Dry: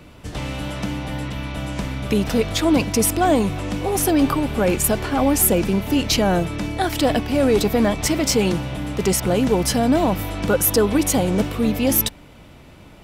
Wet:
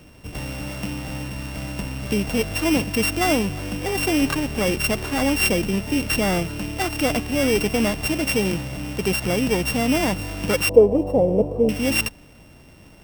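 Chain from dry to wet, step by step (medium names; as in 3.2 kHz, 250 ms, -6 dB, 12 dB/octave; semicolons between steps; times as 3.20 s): sorted samples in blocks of 16 samples; 10.69–11.69 s: FFT filter 330 Hz 0 dB, 480 Hz +13 dB, 940 Hz -2 dB, 1.5 kHz -25 dB; trim -3 dB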